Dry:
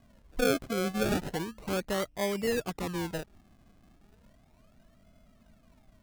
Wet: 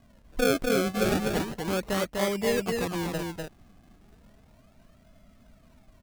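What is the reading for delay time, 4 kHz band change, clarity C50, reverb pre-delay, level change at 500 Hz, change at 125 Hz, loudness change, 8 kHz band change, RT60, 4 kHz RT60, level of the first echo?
248 ms, +4.0 dB, no reverb, no reverb, +4.0 dB, +4.0 dB, +4.0 dB, +4.0 dB, no reverb, no reverb, -3.5 dB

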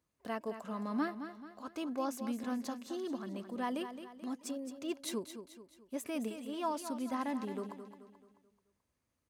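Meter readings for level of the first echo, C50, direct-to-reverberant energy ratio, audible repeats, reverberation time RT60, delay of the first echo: -10.0 dB, no reverb, no reverb, 4, no reverb, 217 ms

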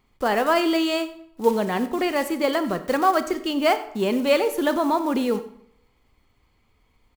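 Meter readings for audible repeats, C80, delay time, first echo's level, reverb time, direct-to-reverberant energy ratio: 1, 15.0 dB, 95 ms, -19.0 dB, 0.70 s, 10.5 dB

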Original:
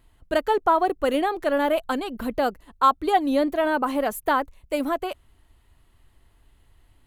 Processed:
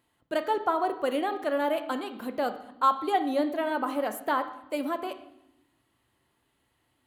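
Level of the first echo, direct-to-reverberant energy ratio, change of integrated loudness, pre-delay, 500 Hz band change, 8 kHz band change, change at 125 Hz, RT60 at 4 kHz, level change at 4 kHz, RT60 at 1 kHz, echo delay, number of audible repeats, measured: no echo, 7.5 dB, -5.5 dB, 4 ms, -5.5 dB, -6.0 dB, no reading, 0.80 s, -5.5 dB, 0.80 s, no echo, no echo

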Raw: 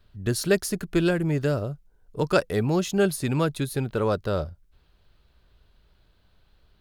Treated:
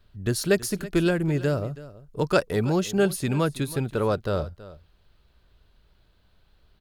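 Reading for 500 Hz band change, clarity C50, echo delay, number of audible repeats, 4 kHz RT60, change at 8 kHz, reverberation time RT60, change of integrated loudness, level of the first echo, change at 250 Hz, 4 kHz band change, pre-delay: 0.0 dB, no reverb, 326 ms, 1, no reverb, 0.0 dB, no reverb, 0.0 dB, -17.5 dB, 0.0 dB, 0.0 dB, no reverb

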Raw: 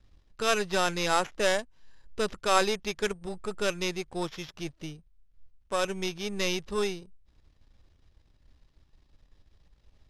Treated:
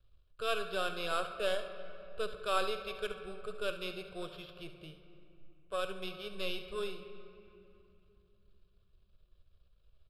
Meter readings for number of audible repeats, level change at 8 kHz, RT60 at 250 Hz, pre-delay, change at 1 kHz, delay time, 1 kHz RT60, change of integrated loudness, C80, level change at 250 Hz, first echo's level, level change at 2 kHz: 1, -17.5 dB, 4.8 s, 3 ms, -8.5 dB, 70 ms, 2.8 s, -8.5 dB, 10.0 dB, -12.5 dB, -13.5 dB, -8.5 dB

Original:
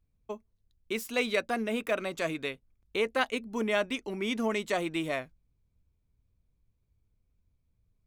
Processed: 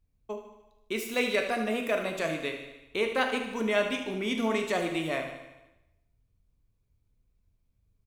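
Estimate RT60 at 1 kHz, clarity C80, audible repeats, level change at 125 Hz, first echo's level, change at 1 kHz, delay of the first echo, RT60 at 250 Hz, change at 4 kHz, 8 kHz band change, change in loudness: 0.95 s, 8.5 dB, 6, +2.0 dB, -10.5 dB, +2.0 dB, 75 ms, 0.95 s, +1.5 dB, +1.5 dB, +1.5 dB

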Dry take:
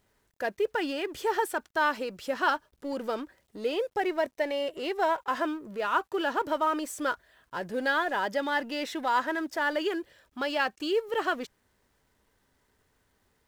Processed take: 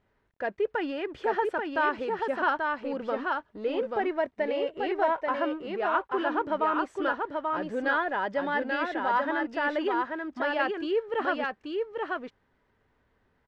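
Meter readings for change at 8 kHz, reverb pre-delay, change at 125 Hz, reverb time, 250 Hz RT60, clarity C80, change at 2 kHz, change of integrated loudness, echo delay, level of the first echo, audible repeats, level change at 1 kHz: under -15 dB, no reverb, +1.5 dB, no reverb, no reverb, no reverb, +0.5 dB, +0.5 dB, 835 ms, -3.5 dB, 1, +1.5 dB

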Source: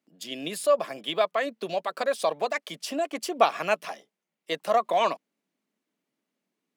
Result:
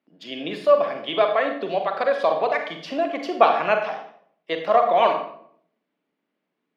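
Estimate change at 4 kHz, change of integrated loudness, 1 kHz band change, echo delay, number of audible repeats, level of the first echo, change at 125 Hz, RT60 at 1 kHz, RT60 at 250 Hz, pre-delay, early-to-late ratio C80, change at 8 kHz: +1.5 dB, +5.5 dB, +6.0 dB, no echo, no echo, no echo, +4.0 dB, 0.55 s, 0.85 s, 36 ms, 9.5 dB, under -15 dB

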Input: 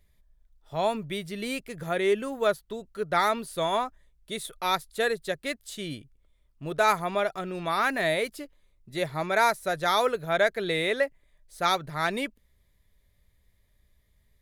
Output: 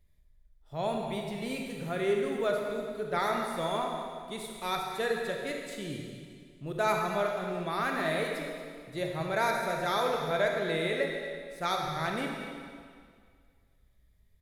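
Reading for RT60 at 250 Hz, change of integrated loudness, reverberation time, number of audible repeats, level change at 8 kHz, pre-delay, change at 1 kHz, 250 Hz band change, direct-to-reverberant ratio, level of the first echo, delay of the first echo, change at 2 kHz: 2.0 s, -4.0 dB, 2.0 s, 1, -5.5 dB, 26 ms, -4.5 dB, -1.5 dB, 0.5 dB, -14.0 dB, 229 ms, -5.0 dB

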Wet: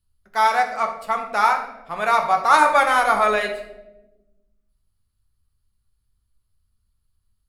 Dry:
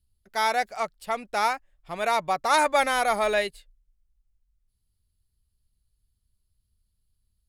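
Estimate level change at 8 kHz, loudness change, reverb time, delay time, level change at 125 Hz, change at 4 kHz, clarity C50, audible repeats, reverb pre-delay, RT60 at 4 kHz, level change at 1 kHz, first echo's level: 0.0 dB, +6.5 dB, 1.0 s, no echo, no reading, +0.5 dB, 8.0 dB, no echo, 9 ms, 0.60 s, +7.5 dB, no echo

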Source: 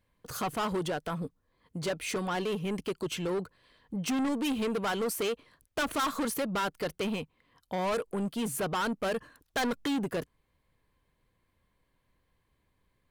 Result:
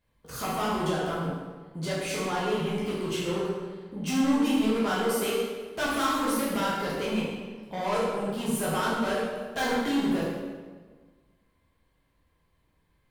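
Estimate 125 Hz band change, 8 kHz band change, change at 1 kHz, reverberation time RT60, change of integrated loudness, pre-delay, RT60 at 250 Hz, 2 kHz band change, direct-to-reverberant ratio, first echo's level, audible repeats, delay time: +4.5 dB, +2.5 dB, +4.0 dB, 1.5 s, +4.0 dB, 8 ms, 1.7 s, +3.5 dB, -7.5 dB, no echo, no echo, no echo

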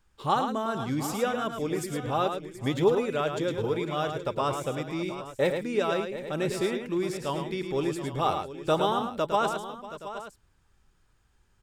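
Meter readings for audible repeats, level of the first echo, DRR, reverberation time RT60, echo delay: 4, -6.5 dB, no reverb, no reverb, 108 ms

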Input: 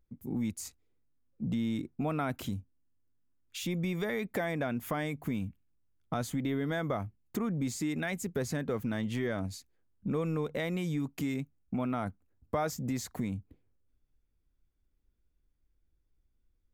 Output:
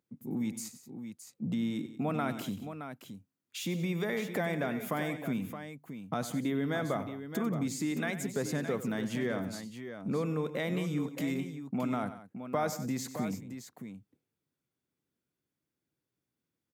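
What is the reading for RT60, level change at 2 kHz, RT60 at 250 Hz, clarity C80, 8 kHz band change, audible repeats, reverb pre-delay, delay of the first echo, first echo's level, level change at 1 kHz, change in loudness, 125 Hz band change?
no reverb, +1.0 dB, no reverb, no reverb, +0.5 dB, 3, no reverb, 95 ms, -13.0 dB, +0.5 dB, 0.0 dB, -1.5 dB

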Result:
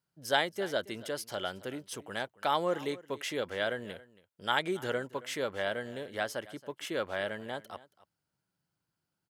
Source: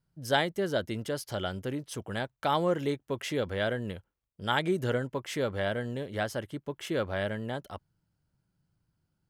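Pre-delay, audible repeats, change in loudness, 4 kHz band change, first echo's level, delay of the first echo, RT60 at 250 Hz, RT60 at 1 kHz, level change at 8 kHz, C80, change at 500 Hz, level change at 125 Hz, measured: no reverb, 1, -2.5 dB, 0.0 dB, -19.5 dB, 275 ms, no reverb, no reverb, 0.0 dB, no reverb, -3.0 dB, -12.0 dB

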